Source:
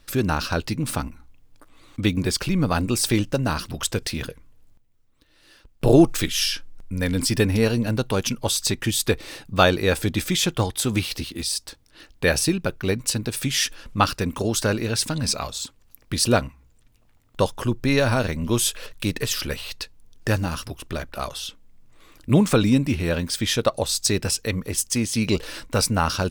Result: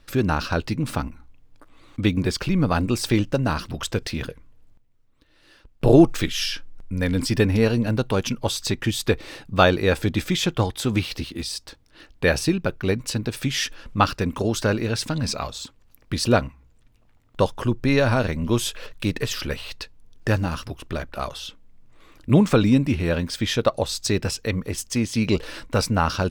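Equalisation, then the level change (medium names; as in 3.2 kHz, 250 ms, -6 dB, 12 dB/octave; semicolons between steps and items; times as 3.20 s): dynamic bell 9.4 kHz, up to -4 dB, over -44 dBFS, Q 2.9; treble shelf 5.2 kHz -9.5 dB; +1.0 dB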